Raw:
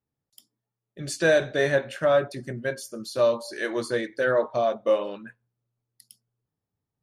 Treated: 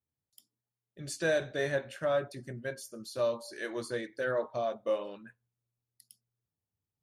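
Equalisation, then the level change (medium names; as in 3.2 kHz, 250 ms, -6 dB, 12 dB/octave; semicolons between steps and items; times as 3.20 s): peaking EQ 82 Hz +7 dB 0.79 oct; treble shelf 6.9 kHz +4.5 dB; -9.0 dB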